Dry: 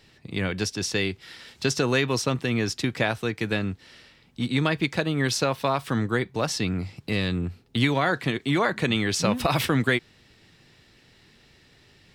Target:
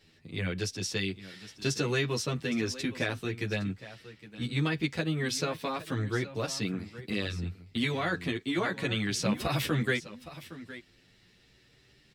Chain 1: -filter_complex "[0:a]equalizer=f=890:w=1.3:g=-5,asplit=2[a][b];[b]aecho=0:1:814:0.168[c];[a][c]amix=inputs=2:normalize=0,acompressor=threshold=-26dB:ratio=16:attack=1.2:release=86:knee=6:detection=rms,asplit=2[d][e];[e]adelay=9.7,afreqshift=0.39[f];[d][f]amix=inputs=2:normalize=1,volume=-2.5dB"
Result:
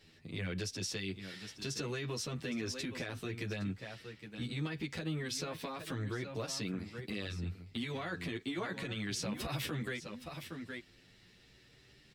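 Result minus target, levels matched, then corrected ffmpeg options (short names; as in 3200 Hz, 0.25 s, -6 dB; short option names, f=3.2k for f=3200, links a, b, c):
compressor: peak gain reduction +13.5 dB
-filter_complex "[0:a]equalizer=f=890:w=1.3:g=-5,asplit=2[a][b];[b]aecho=0:1:814:0.168[c];[a][c]amix=inputs=2:normalize=0,asplit=2[d][e];[e]adelay=9.7,afreqshift=0.39[f];[d][f]amix=inputs=2:normalize=1,volume=-2.5dB"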